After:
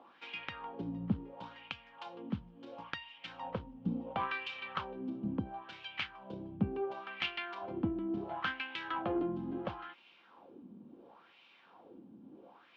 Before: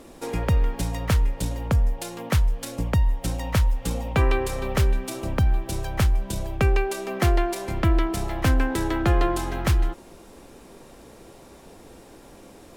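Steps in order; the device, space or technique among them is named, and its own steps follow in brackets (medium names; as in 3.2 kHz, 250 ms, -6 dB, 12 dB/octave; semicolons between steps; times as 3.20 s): 1.98–3.18 s: tilt shelf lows -5.5 dB; wah-wah guitar rig (wah-wah 0.72 Hz 210–2600 Hz, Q 3.2; valve stage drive 25 dB, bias 0.4; cabinet simulation 94–4500 Hz, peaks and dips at 200 Hz +4 dB, 420 Hz -7 dB, 620 Hz -7 dB, 1.9 kHz -7 dB, 3.1 kHz +7 dB); trim +2.5 dB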